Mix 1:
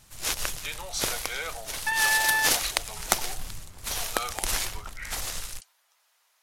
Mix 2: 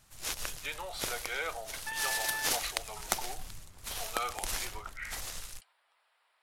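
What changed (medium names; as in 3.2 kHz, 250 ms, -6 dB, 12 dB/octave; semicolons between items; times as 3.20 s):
speech: add boxcar filter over 7 samples; first sound -7.5 dB; second sound -12.0 dB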